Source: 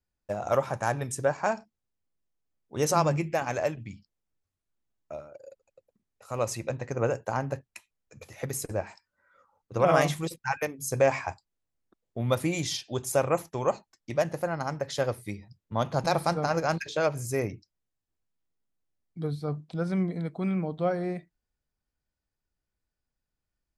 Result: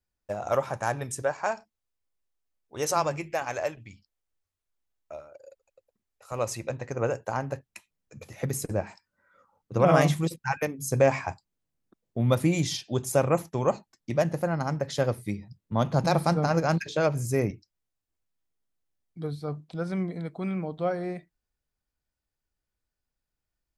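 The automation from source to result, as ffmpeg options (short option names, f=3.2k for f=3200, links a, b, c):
-af "asetnsamples=n=441:p=0,asendcmd='1.22 equalizer g -9.5;6.32 equalizer g -1.5;7.68 equalizer g 7;17.51 equalizer g -2.5',equalizer=f=180:t=o:w=1.8:g=-2.5"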